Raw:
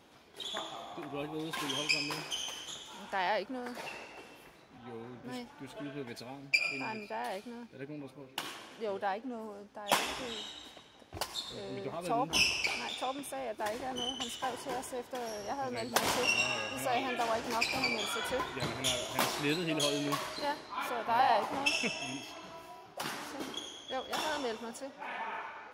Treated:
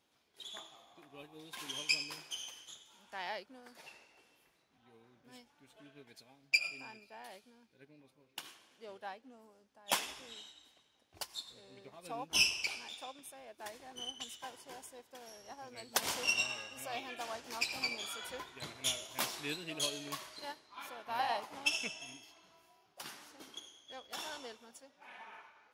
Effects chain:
high-shelf EQ 2,200 Hz +9 dB
expander for the loud parts 1.5 to 1, over −44 dBFS
level −6 dB

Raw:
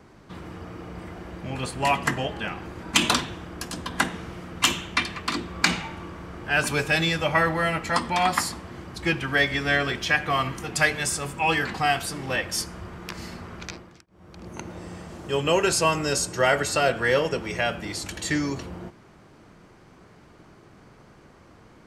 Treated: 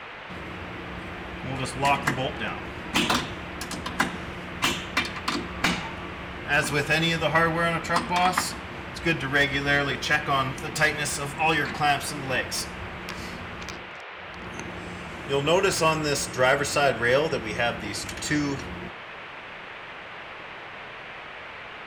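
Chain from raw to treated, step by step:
noise in a band 400–2,700 Hz −40 dBFS
slew-rate limiting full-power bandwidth 320 Hz

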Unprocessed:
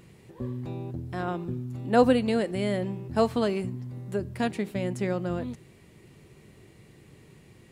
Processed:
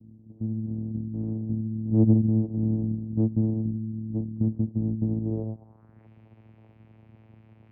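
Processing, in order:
channel vocoder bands 4, saw 110 Hz
low-pass filter sweep 260 Hz → 2,500 Hz, 0:05.18–0:06.10

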